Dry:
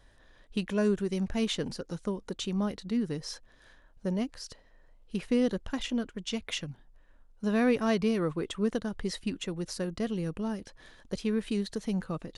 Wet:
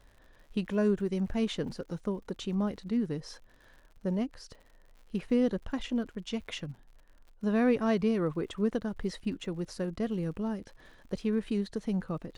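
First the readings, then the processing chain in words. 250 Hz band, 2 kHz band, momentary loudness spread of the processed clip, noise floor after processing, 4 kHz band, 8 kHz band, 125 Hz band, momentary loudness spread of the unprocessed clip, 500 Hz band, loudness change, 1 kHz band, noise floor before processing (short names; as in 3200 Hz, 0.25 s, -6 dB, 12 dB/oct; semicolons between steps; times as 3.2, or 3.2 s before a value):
0.0 dB, -3.0 dB, 12 LU, -59 dBFS, -5.5 dB, -8.0 dB, 0.0 dB, 11 LU, -0.5 dB, -0.5 dB, -1.0 dB, -60 dBFS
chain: crackle 92/s -43 dBFS; high shelf 2700 Hz -9 dB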